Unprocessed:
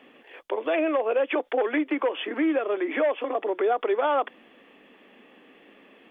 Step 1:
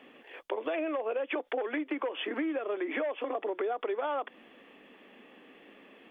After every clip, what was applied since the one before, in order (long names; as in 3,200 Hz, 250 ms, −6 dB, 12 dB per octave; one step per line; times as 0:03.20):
downward compressor, threshold −28 dBFS, peak gain reduction 8.5 dB
level −1.5 dB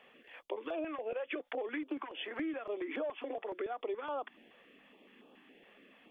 notch on a step sequencer 7.1 Hz 290–2,000 Hz
level −4 dB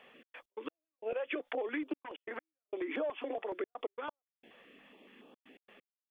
gate pattern "xx.x.x...xxxxxx" 132 BPM −60 dB
level +2 dB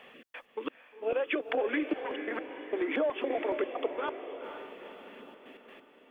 feedback delay with all-pass diffusion 478 ms, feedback 49%, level −8.5 dB
level +6 dB